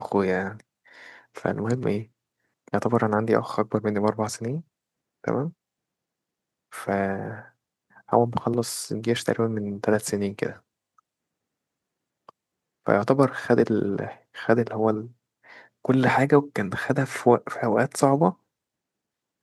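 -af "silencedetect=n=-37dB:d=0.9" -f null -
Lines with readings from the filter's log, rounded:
silence_start: 5.50
silence_end: 6.73 | silence_duration: 1.23
silence_start: 10.53
silence_end: 12.29 | silence_duration: 1.75
silence_start: 18.31
silence_end: 19.42 | silence_duration: 1.11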